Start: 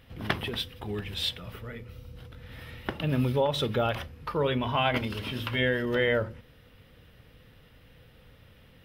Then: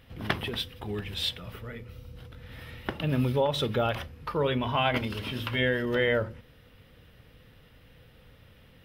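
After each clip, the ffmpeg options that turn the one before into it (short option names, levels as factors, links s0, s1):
-af anull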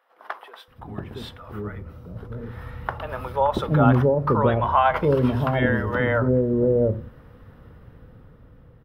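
-filter_complex "[0:a]dynaudnorm=f=290:g=9:m=3.16,highshelf=f=1800:t=q:w=1.5:g=-13.5,acrossover=split=580[s0][s1];[s0]adelay=680[s2];[s2][s1]amix=inputs=2:normalize=0"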